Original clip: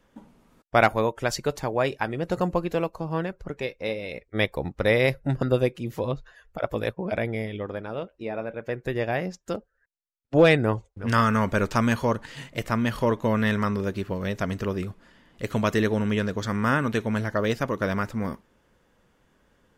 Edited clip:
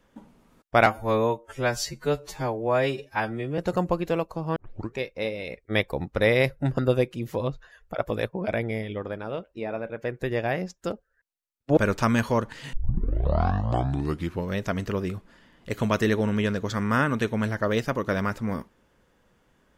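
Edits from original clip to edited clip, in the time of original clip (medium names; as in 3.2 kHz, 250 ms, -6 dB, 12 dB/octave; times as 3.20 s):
0.86–2.22 s: stretch 2×
3.20 s: tape start 0.40 s
10.41–11.50 s: delete
12.46 s: tape start 1.77 s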